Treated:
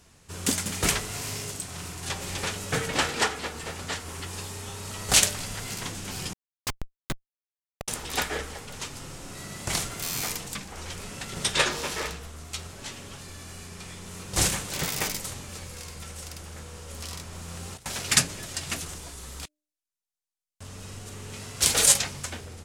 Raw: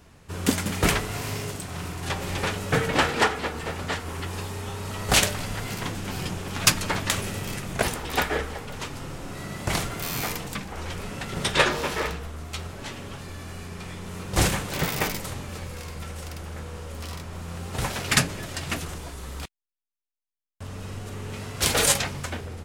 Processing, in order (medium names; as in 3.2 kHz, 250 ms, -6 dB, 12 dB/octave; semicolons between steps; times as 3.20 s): peaking EQ 7.6 kHz +10.5 dB 2.1 oct; de-hum 301.3 Hz, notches 2; 6.33–7.88 s: Schmitt trigger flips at -10 dBFS; 16.88–17.86 s: compressor with a negative ratio -32 dBFS, ratio -0.5; trim -6 dB